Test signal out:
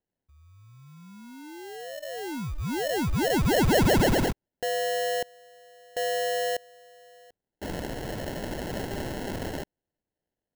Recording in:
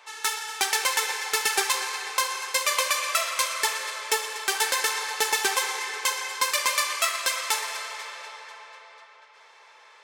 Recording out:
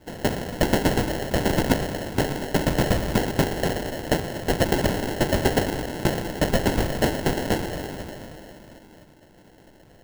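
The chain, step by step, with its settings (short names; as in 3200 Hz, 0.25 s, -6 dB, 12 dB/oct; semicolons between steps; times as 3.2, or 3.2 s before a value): weighting filter ITU-R 468; sample-rate reducer 1200 Hz, jitter 0%; gain -4.5 dB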